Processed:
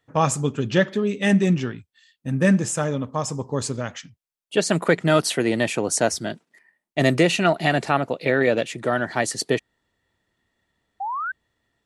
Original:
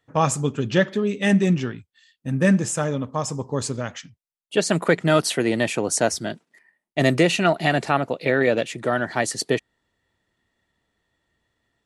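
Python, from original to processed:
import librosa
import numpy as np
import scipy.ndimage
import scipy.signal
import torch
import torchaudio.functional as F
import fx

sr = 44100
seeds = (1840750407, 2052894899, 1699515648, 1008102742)

y = fx.spec_paint(x, sr, seeds[0], shape='rise', start_s=11.0, length_s=0.32, low_hz=750.0, high_hz=1600.0, level_db=-27.0)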